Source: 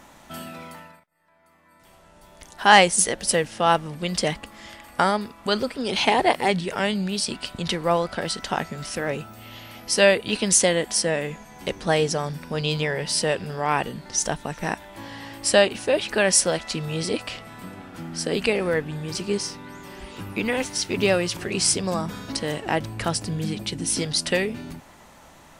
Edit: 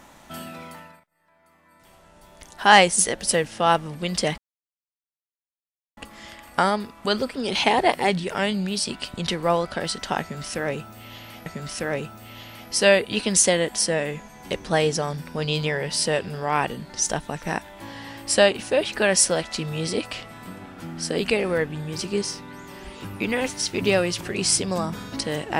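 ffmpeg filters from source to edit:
ffmpeg -i in.wav -filter_complex "[0:a]asplit=3[link_01][link_02][link_03];[link_01]atrim=end=4.38,asetpts=PTS-STARTPTS,afade=type=out:start_time=4.376:duration=0.004:curve=hsin,apad=pad_dur=1.59[link_04];[link_02]atrim=start=4.38:end=9.872,asetpts=PTS-STARTPTS,afade=type=in:duration=0.004:curve=hsin[link_05];[link_03]atrim=start=8.618[link_06];[link_04][link_05]concat=n=2:v=0:a=1[link_07];[link_07][link_06]acrossfade=duration=0.004:curve1=hsin:curve2=hsin" out.wav

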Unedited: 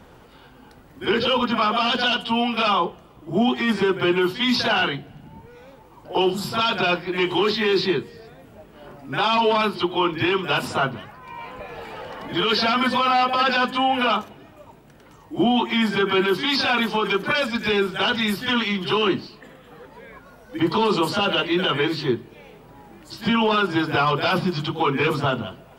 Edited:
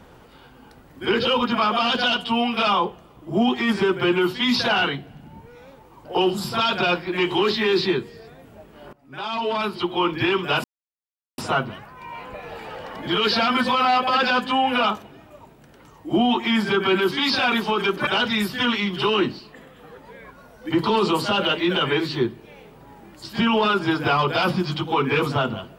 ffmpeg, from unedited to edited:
ffmpeg -i in.wav -filter_complex "[0:a]asplit=4[link_01][link_02][link_03][link_04];[link_01]atrim=end=8.93,asetpts=PTS-STARTPTS,afade=type=out:start_time=8.926:duration=0.004:curve=hsin:silence=0.1[link_05];[link_02]atrim=start=8.93:end=10.64,asetpts=PTS-STARTPTS,afade=type=in:duration=1.16:silence=0.1,afade=type=out:start_time=1.706:duration=0.004:curve=hsin,apad=pad_dur=0.74[link_06];[link_03]atrim=start=10.64:end=17.332,asetpts=PTS-STARTPTS,afade=type=in:duration=0.004:curve=hsin[link_07];[link_04]atrim=start=17.948[link_08];[link_05][link_06][link_07]concat=n=3:v=0:a=1[link_09];[link_09][link_08]acrossfade=duration=0.004:curve1=hsin:curve2=hsin" out.wav

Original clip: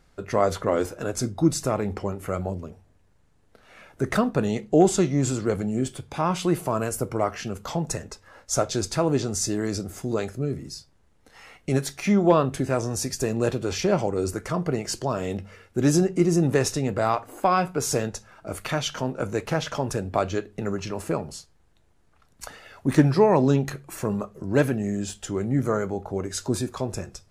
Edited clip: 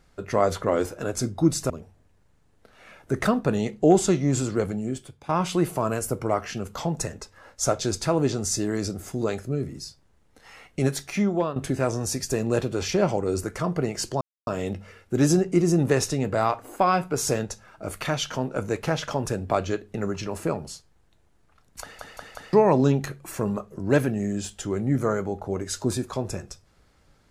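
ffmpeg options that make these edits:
ffmpeg -i in.wav -filter_complex "[0:a]asplit=9[link_01][link_02][link_03][link_04][link_05][link_06][link_07][link_08][link_09];[link_01]atrim=end=1.702[link_10];[link_02]atrim=start=2.598:end=6.19,asetpts=PTS-STARTPTS,afade=type=out:start_time=2.872:duration=0.72:silence=0.188365[link_11];[link_03]atrim=start=6.19:end=12.46,asetpts=PTS-STARTPTS,afade=type=in:duration=0.004:curve=hsin:silence=0.188365,afade=type=out:start_time=5.74:duration=0.53:silence=0.237137[link_12];[link_04]atrim=start=12.46:end=15.11,asetpts=PTS-STARTPTS,afade=type=in:duration=0.004:curve=hsin:silence=0.237137,afade=type=out:start_time=2.646:duration=0.004:curve=hsin,apad=pad_dur=0.26[link_13];[link_05]atrim=start=15.11:end=22.632,asetpts=PTS-STARTPTS,afade=type=in:duration=0.004:curve=hsin[link_14];[link_06]atrim=start=22.448:end=22.632[link_15];[link_07]atrim=start=22.448:end=22.632[link_16];[link_08]atrim=start=22.448:end=22.632[link_17];[link_09]atrim=start=23.168[link_18];[link_11][link_12][link_13][link_14]concat=n=4:v=0:a=1[link_19];[link_10][link_19]acrossfade=duration=0.004:curve1=hsin:curve2=hsin[link_20];[link_20][link_15]acrossfade=duration=0.004:curve1=hsin:curve2=hsin[link_21];[link_21][link_16]acrossfade=duration=0.004:curve1=hsin:curve2=hsin[link_22];[link_22][link_17]acrossfade=duration=0.004:curve1=hsin:curve2=hsin[link_23];[link_23][link_18]acrossfade=duration=0.004:curve1=hsin:curve2=hsin" out.wav

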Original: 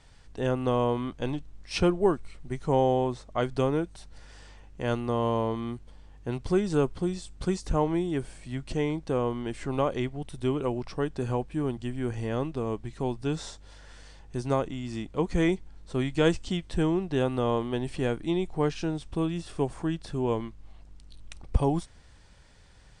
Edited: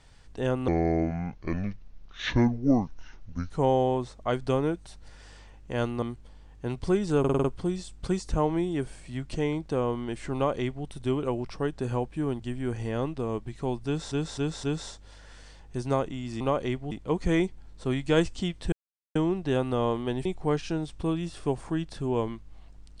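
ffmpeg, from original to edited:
ffmpeg -i in.wav -filter_complex "[0:a]asplit=16[link_01][link_02][link_03][link_04][link_05][link_06][link_07][link_08][link_09][link_10][link_11][link_12][link_13][link_14][link_15][link_16];[link_01]atrim=end=0.684[link_17];[link_02]atrim=start=0.68:end=2.6,asetpts=PTS-STARTPTS,asetrate=29988,aresample=44100[link_18];[link_03]atrim=start=2.596:end=5.122[link_19];[link_04]atrim=start=5.648:end=6.872[link_20];[link_05]atrim=start=6.818:end=6.872[link_21];[link_06]atrim=start=6.818:end=6.872[link_22];[link_07]atrim=start=6.818:end=6.872[link_23];[link_08]atrim=start=6.818:end=6.872[link_24];[link_09]atrim=start=6.818:end=13.492[link_25];[link_10]atrim=start=13.228:end=13.492[link_26];[link_11]atrim=start=13.228:end=13.492[link_27];[link_12]atrim=start=13.228:end=15.002[link_28];[link_13]atrim=start=9.718:end=10.232[link_29];[link_14]atrim=start=14.998:end=16.81,asetpts=PTS-STARTPTS,afade=type=out:start_time=1.808:duration=0.004:curve=hsin,apad=pad_dur=0.43[link_30];[link_15]atrim=start=16.81:end=17.912,asetpts=PTS-STARTPTS,afade=type=in:duration=0.004:curve=hsin[link_31];[link_16]atrim=start=18.378[link_32];[link_17][link_18]acrossfade=duration=0.004:curve1=hsin:curve2=hsin[link_33];[link_33][link_19]acrossfade=duration=0.004:curve1=hsin:curve2=hsin[link_34];[link_34][link_20]acrossfade=duration=0.004:curve1=hsin:curve2=hsin[link_35];[link_35][link_21]acrossfade=duration=0.004:curve1=hsin:curve2=hsin[link_36];[link_36][link_22]acrossfade=duration=0.004:curve1=hsin:curve2=hsin[link_37];[link_37][link_23]acrossfade=duration=0.004:curve1=hsin:curve2=hsin[link_38];[link_38][link_24]acrossfade=duration=0.004:curve1=hsin:curve2=hsin[link_39];[link_39][link_25]acrossfade=duration=0.004:curve1=hsin:curve2=hsin[link_40];[link_40][link_26]acrossfade=duration=0.004:curve1=hsin:curve2=hsin[link_41];[link_41][link_27]acrossfade=duration=0.004:curve1=hsin:curve2=hsin[link_42];[link_42][link_28]acrossfade=duration=0.004:curve1=hsin:curve2=hsin[link_43];[link_43][link_29]acrossfade=duration=0.004:curve1=hsin:curve2=hsin[link_44];[link_30][link_31]concat=n=2:v=0:a=1[link_45];[link_44][link_45]acrossfade=duration=0.004:curve1=hsin:curve2=hsin[link_46];[link_46][link_32]acrossfade=duration=0.004:curve1=hsin:curve2=hsin" out.wav

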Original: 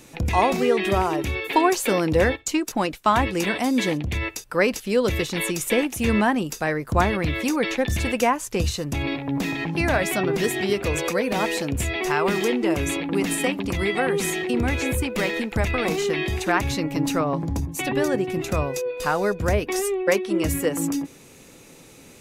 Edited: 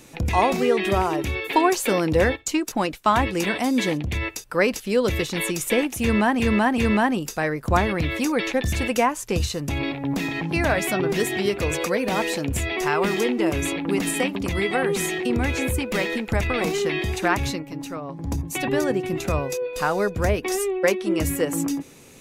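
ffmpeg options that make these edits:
ffmpeg -i in.wav -filter_complex "[0:a]asplit=5[link_01][link_02][link_03][link_04][link_05];[link_01]atrim=end=6.402[link_06];[link_02]atrim=start=6.018:end=6.402[link_07];[link_03]atrim=start=6.018:end=16.87,asetpts=PTS-STARTPTS,afade=type=out:start_time=10.712:duration=0.14:silence=0.334965[link_08];[link_04]atrim=start=16.87:end=17.42,asetpts=PTS-STARTPTS,volume=-9.5dB[link_09];[link_05]atrim=start=17.42,asetpts=PTS-STARTPTS,afade=type=in:duration=0.14:silence=0.334965[link_10];[link_06][link_07]acrossfade=duration=0.004:curve1=hsin:curve2=hsin[link_11];[link_08][link_09][link_10]concat=n=3:v=0:a=1[link_12];[link_11][link_12]acrossfade=duration=0.004:curve1=hsin:curve2=hsin" out.wav

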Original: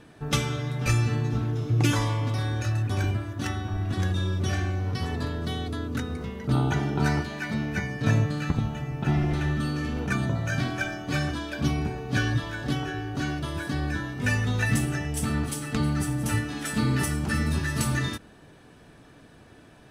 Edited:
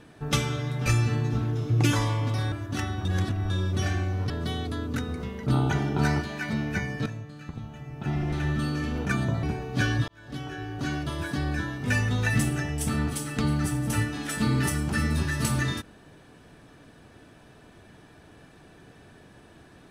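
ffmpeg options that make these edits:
ffmpeg -i in.wav -filter_complex "[0:a]asplit=8[link_01][link_02][link_03][link_04][link_05][link_06][link_07][link_08];[link_01]atrim=end=2.522[link_09];[link_02]atrim=start=3.188:end=3.722[link_10];[link_03]atrim=start=3.718:end=4.172,asetpts=PTS-STARTPTS,areverse[link_11];[link_04]atrim=start=4.168:end=4.972[link_12];[link_05]atrim=start=5.308:end=8.07,asetpts=PTS-STARTPTS,afade=type=out:start_time=2.758:duration=0.004:curve=hsin:silence=0.16788[link_13];[link_06]atrim=start=8.07:end=10.442,asetpts=PTS-STARTPTS,afade=type=in:duration=1.5:curve=qua:silence=0.16788[link_14];[link_07]atrim=start=11.788:end=12.44,asetpts=PTS-STARTPTS,afade=type=out:start_time=0.648:duration=0.004:curve=hsin[link_15];[link_08]atrim=start=12.44,asetpts=PTS-STARTPTS,afade=type=in:duration=1.14:curve=qsin[link_16];[link_09][link_10]acrossfade=duration=0.004:curve1=hsin:curve2=hsin[link_17];[link_17][link_11]acrossfade=duration=0.004:curve1=hsin:curve2=hsin[link_18];[link_18][link_12]acrossfade=duration=0.004:curve1=hsin:curve2=hsin[link_19];[link_13][link_14]concat=n=2:v=0:a=1[link_20];[link_19][link_20]acrossfade=duration=0.004:curve1=hsin:curve2=hsin[link_21];[link_15][link_16]concat=n=2:v=0:a=1[link_22];[link_21][link_22]acrossfade=duration=0.004:curve1=hsin:curve2=hsin" out.wav

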